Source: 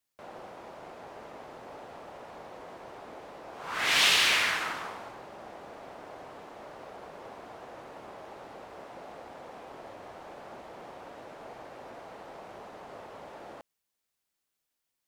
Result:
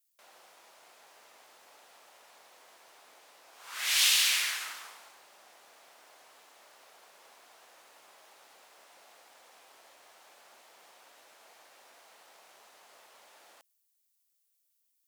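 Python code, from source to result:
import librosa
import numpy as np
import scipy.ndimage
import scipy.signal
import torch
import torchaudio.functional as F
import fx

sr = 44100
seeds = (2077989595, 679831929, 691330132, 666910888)

y = np.diff(x, prepend=0.0)
y = y * 10.0 ** (4.5 / 20.0)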